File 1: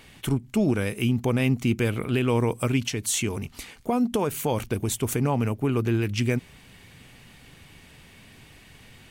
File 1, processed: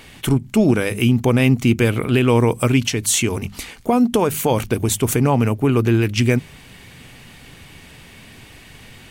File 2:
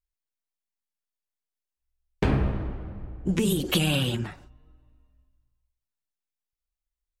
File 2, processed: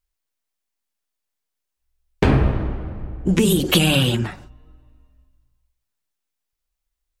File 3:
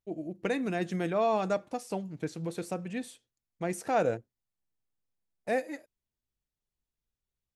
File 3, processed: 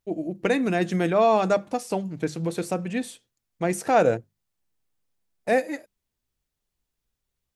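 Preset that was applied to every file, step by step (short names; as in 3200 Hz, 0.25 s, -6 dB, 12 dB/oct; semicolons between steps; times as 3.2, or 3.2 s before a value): notches 50/100/150/200 Hz; gain +8 dB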